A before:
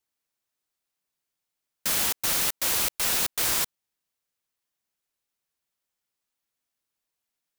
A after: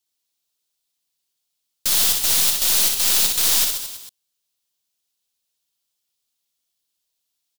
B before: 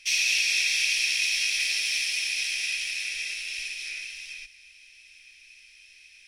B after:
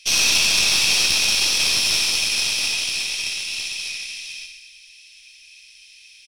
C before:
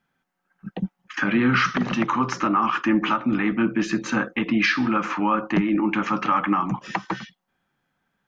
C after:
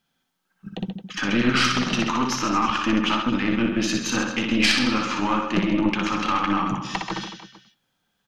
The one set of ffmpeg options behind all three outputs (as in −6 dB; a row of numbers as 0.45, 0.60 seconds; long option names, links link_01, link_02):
-af "highshelf=frequency=2600:width_type=q:width=1.5:gain=8,aecho=1:1:60|132|218.4|322.1|446.5:0.631|0.398|0.251|0.158|0.1,aeval=exprs='(tanh(2.82*val(0)+0.7)-tanh(0.7))/2.82':channel_layout=same,volume=1.5dB"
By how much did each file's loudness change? +8.0, +7.0, 0.0 LU